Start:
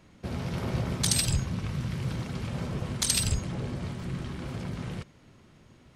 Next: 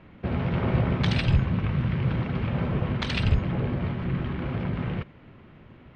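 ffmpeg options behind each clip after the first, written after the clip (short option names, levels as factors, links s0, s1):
-af "lowpass=f=2900:w=0.5412,lowpass=f=2900:w=1.3066,volume=2.11"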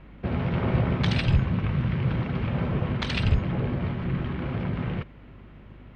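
-af "aeval=exprs='val(0)+0.00398*(sin(2*PI*50*n/s)+sin(2*PI*2*50*n/s)/2+sin(2*PI*3*50*n/s)/3+sin(2*PI*4*50*n/s)/4+sin(2*PI*5*50*n/s)/5)':c=same"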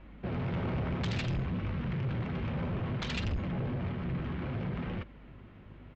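-af "flanger=delay=3.4:depth=9.2:regen=-48:speed=0.6:shape=sinusoidal,aresample=16000,asoftclip=type=tanh:threshold=0.0376,aresample=44100"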